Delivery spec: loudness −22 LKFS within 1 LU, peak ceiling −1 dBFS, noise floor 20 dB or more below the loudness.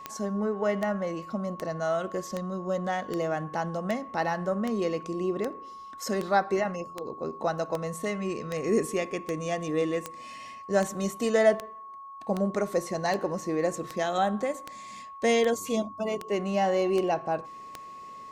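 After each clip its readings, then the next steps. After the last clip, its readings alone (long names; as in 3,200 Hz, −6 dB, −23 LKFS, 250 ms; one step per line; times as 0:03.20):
number of clicks 24; interfering tone 1,100 Hz; level of the tone −41 dBFS; integrated loudness −29.0 LKFS; sample peak −11.0 dBFS; target loudness −22.0 LKFS
→ click removal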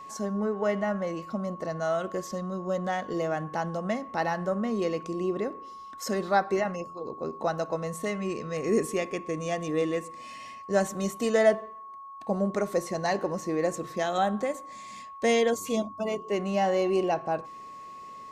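number of clicks 0; interfering tone 1,100 Hz; level of the tone −41 dBFS
→ notch filter 1,100 Hz, Q 30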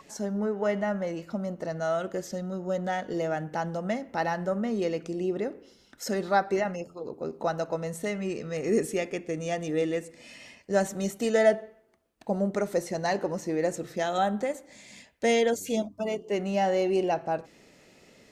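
interfering tone none found; integrated loudness −29.5 LKFS; sample peak −11.0 dBFS; target loudness −22.0 LKFS
→ level +7.5 dB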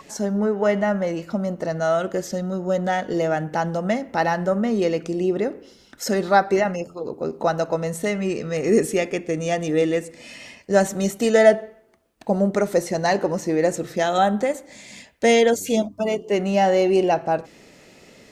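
integrated loudness −22.0 LKFS; sample peak −3.5 dBFS; background noise floor −51 dBFS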